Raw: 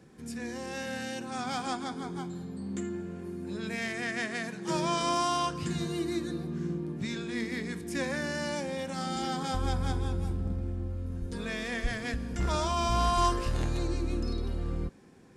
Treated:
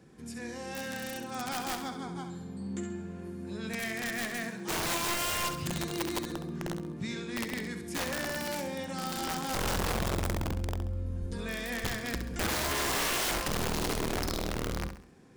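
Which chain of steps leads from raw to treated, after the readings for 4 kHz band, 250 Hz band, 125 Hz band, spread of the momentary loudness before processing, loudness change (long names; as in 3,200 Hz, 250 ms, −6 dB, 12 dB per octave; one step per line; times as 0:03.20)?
+2.5 dB, −2.5 dB, −3.0 dB, 9 LU, −0.5 dB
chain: wrap-around overflow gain 24.5 dB
flutter between parallel walls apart 11.5 metres, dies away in 0.48 s
level −1.5 dB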